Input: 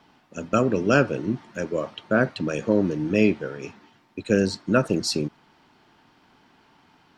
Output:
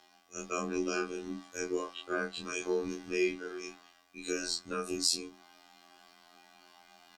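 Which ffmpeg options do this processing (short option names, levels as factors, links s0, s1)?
-filter_complex "[0:a]afftfilt=real='re':imag='-im':win_size=2048:overlap=0.75,bandreject=f=50:t=h:w=6,bandreject=f=100:t=h:w=6,bandreject=f=150:t=h:w=6,bandreject=f=200:t=h:w=6,bandreject=f=250:t=h:w=6,bandreject=f=300:t=h:w=6,bandreject=f=350:t=h:w=6,bandreject=f=400:t=h:w=6,bandreject=f=450:t=h:w=6,afftfilt=real='hypot(re,im)*cos(PI*b)':imag='0':win_size=2048:overlap=0.75,alimiter=limit=0.133:level=0:latency=1:release=220,areverse,acompressor=mode=upward:threshold=0.00316:ratio=2.5,areverse,afreqshift=-64,bass=f=250:g=-13,treble=f=4000:g=11,asplit=2[s0][s1];[s1]adelay=14,volume=0.75[s2];[s0][s2]amix=inputs=2:normalize=0"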